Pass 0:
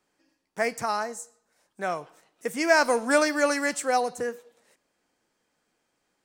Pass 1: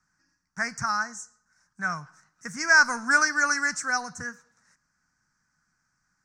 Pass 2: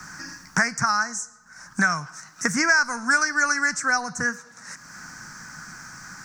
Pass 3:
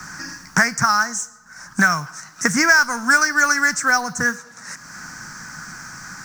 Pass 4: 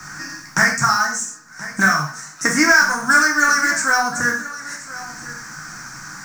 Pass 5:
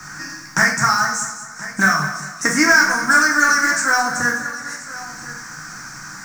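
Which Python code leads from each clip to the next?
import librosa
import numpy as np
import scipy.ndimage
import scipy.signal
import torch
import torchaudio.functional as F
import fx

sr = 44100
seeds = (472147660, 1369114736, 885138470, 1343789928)

y1 = fx.curve_eq(x, sr, hz=(160.0, 430.0, 610.0, 1500.0, 3200.0, 5800.0, 12000.0), db=(0, -28, -23, 1, -27, 0, -25))
y1 = y1 * librosa.db_to_amplitude(8.0)
y2 = fx.band_squash(y1, sr, depth_pct=100)
y2 = y2 * librosa.db_to_amplitude(3.5)
y3 = fx.mod_noise(y2, sr, seeds[0], snr_db=25)
y3 = y3 * librosa.db_to_amplitude(5.0)
y4 = y3 + 10.0 ** (-16.0 / 20.0) * np.pad(y3, (int(1028 * sr / 1000.0), 0))[:len(y3)]
y4 = fx.rev_gated(y4, sr, seeds[1], gate_ms=160, shape='falling', drr_db=-1.0)
y4 = y4 * librosa.db_to_amplitude(-2.0)
y5 = fx.echo_feedback(y4, sr, ms=204, feedback_pct=41, wet_db=-11.5)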